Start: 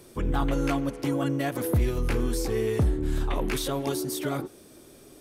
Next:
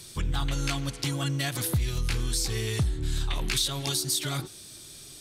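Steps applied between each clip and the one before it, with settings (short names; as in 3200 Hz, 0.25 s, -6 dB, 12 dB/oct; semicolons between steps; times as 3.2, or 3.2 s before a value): graphic EQ 125/250/500/1000/4000/8000 Hz +5/-8/-10/-3/+11/+8 dB; compressor 2.5:1, threshold -28 dBFS, peak gain reduction 7.5 dB; gain +2.5 dB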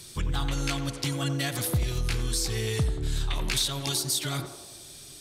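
narrowing echo 91 ms, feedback 66%, band-pass 630 Hz, level -7 dB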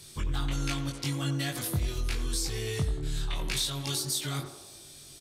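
doubler 21 ms -3.5 dB; gain -5 dB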